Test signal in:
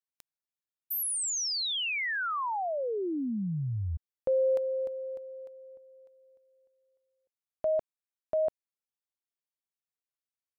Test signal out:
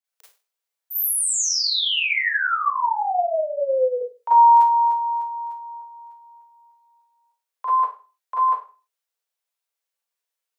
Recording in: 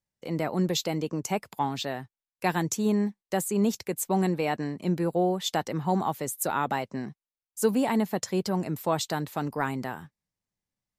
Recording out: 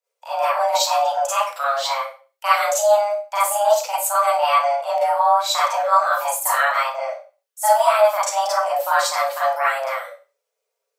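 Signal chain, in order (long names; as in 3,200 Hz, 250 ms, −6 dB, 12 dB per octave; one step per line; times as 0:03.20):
frequency shifter +410 Hz
four-comb reverb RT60 0.34 s, combs from 33 ms, DRR −9 dB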